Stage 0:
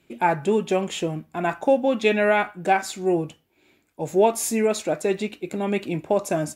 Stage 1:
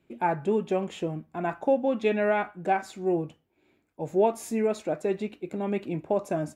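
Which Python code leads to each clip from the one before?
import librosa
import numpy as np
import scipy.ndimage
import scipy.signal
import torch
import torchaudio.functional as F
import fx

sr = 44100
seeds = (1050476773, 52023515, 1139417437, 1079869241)

y = fx.high_shelf(x, sr, hz=2400.0, db=-11.5)
y = y * 10.0 ** (-4.0 / 20.0)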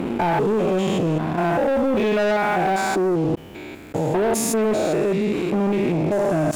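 y = fx.spec_steps(x, sr, hold_ms=200)
y = fx.leveller(y, sr, passes=3)
y = fx.env_flatten(y, sr, amount_pct=70)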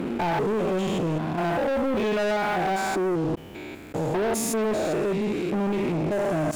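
y = 10.0 ** (-18.5 / 20.0) * np.tanh(x / 10.0 ** (-18.5 / 20.0))
y = y * 10.0 ** (-2.0 / 20.0)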